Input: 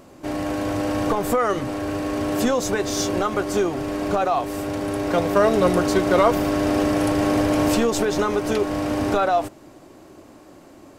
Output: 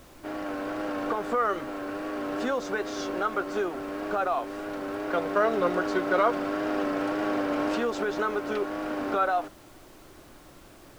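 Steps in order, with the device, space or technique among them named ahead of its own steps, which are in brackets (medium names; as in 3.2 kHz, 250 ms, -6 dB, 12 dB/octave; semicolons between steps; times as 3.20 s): horn gramophone (band-pass 280–4100 Hz; peaking EQ 1.4 kHz +8 dB 0.44 oct; wow and flutter; pink noise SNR 24 dB); bass shelf 440 Hz +2.5 dB; trim -8 dB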